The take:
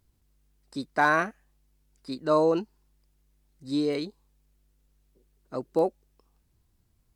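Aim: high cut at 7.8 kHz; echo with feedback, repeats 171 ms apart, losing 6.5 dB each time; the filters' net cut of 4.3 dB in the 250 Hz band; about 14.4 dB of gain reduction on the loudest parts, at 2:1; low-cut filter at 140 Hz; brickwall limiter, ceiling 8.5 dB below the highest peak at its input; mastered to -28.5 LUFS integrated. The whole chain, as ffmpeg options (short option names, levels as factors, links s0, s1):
-af "highpass=140,lowpass=7800,equalizer=f=250:t=o:g=-5.5,acompressor=threshold=0.00501:ratio=2,alimiter=level_in=2.37:limit=0.0631:level=0:latency=1,volume=0.422,aecho=1:1:171|342|513|684|855|1026:0.473|0.222|0.105|0.0491|0.0231|0.0109,volume=6.31"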